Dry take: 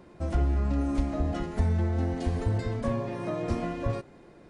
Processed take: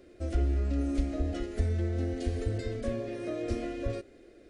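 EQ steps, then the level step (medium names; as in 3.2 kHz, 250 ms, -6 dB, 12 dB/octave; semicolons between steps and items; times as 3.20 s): static phaser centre 390 Hz, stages 4; 0.0 dB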